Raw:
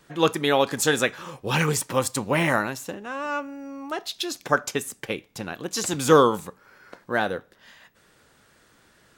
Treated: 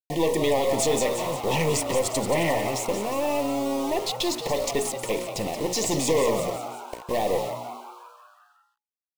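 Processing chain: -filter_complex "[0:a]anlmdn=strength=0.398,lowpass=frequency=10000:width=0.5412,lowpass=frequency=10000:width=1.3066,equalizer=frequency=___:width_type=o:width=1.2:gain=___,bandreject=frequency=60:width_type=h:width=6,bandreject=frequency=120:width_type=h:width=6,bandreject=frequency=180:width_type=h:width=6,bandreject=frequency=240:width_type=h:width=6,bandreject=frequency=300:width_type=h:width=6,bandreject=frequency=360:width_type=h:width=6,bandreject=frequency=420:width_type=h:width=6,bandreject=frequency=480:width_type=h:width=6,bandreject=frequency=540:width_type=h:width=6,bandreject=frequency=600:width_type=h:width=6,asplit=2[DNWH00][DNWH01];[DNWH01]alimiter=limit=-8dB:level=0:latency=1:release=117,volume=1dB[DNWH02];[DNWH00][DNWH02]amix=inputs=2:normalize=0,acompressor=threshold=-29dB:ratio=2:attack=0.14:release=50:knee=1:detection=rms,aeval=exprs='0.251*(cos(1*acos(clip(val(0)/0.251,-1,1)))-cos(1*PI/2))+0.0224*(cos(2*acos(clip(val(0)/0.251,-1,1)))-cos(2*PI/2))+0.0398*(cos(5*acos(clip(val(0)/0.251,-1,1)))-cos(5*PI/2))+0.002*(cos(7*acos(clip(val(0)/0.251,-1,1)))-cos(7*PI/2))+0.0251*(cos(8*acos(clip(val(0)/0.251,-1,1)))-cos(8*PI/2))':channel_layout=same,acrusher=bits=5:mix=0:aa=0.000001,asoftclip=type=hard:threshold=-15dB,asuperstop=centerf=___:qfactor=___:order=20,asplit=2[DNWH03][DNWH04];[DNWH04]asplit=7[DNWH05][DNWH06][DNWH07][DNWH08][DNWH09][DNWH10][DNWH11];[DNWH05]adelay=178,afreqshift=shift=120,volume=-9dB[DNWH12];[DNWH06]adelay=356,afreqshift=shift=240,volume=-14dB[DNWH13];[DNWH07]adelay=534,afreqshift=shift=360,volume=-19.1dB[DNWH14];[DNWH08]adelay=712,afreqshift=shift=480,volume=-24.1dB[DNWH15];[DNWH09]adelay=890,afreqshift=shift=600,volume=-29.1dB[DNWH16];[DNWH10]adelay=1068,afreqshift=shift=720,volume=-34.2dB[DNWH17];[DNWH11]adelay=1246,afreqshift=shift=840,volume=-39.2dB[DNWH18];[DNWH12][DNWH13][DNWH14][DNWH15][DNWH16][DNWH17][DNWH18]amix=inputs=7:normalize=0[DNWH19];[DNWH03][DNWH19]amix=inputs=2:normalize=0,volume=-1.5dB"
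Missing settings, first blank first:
550, 8.5, 1400, 2.1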